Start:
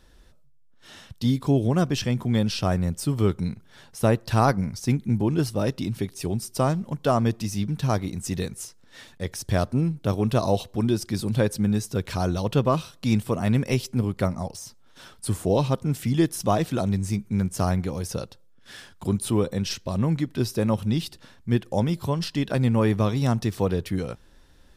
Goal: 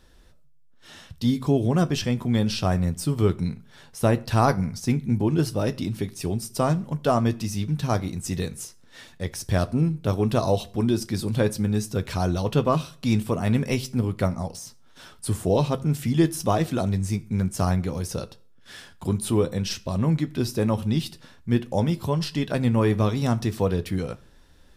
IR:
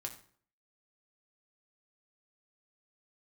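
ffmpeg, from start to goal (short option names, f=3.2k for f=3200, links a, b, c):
-filter_complex "[0:a]asplit=2[a][b];[1:a]atrim=start_sample=2205,asetrate=52920,aresample=44100,adelay=12[c];[b][c]afir=irnorm=-1:irlink=0,volume=-7dB[d];[a][d]amix=inputs=2:normalize=0"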